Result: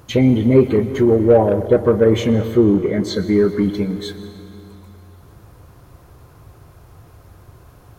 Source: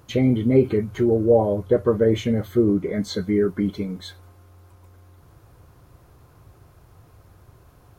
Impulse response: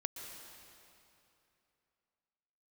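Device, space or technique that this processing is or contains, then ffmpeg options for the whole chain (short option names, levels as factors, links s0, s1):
saturated reverb return: -filter_complex "[0:a]asettb=1/sr,asplit=3[s0][s1][s2];[s0]atrim=end=2.324[s3];[s1]atrim=start=2.32:end=3.16,asetpts=PTS-STARTPTS,afade=t=in:d=0.004:c=qsin,afade=t=out:st=0.836:d=0.004:c=qsin,highshelf=f=6300:g=-5.5[s4];[s2]atrim=start=3.156[s5];[s3][s4]acrossfade=d=0.004:c1=hsin:c2=qsin[s6];[s6][s5]acrossfade=d=0.004:c1=qsin:c2=hsin,asplit=2[s7][s8];[1:a]atrim=start_sample=2205[s9];[s8][s9]afir=irnorm=-1:irlink=0,asoftclip=type=tanh:threshold=0.15,volume=0.794[s10];[s7][s10]amix=inputs=2:normalize=0,volume=1.26"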